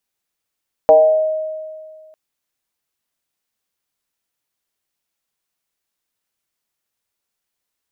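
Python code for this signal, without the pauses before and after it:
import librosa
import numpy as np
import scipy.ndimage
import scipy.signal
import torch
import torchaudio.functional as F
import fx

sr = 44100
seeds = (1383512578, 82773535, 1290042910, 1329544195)

y = fx.fm2(sr, length_s=1.25, level_db=-4.0, carrier_hz=627.0, ratio=0.26, index=0.85, index_s=0.91, decay_s=1.92, shape='exponential')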